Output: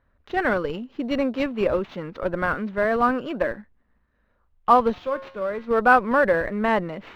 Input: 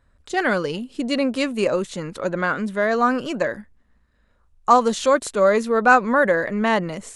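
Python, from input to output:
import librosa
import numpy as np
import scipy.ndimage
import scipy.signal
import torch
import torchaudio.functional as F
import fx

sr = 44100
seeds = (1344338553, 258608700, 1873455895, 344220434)

p1 = fx.low_shelf(x, sr, hz=210.0, db=-6.5)
p2 = fx.schmitt(p1, sr, flips_db=-18.0)
p3 = p1 + (p2 * librosa.db_to_amplitude(-12.0))
p4 = fx.comb_fb(p3, sr, f0_hz=180.0, decay_s=0.6, harmonics='all', damping=0.0, mix_pct=70, at=(4.92, 5.67), fade=0.02)
p5 = fx.sample_hold(p4, sr, seeds[0], rate_hz=10000.0, jitter_pct=0)
y = fx.air_absorb(p5, sr, metres=330.0)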